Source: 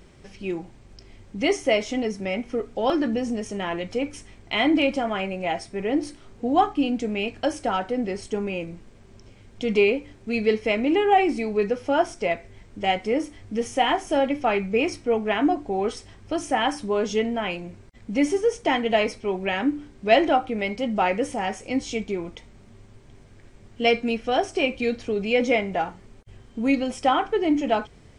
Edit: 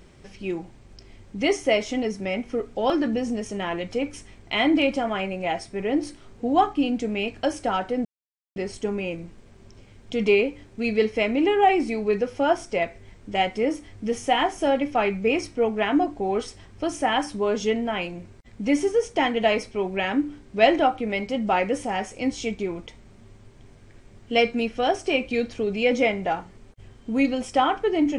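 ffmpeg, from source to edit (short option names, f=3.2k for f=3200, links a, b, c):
-filter_complex "[0:a]asplit=2[a][b];[a]atrim=end=8.05,asetpts=PTS-STARTPTS,afade=t=out:st=8.046:d=0.004:c=hsin,apad=pad_dur=0.51[c];[b]atrim=start=8.05,asetpts=PTS-STARTPTS,afade=t=in:d=0.004:c=hsin[d];[c][d]concat=n=2:v=0:a=1"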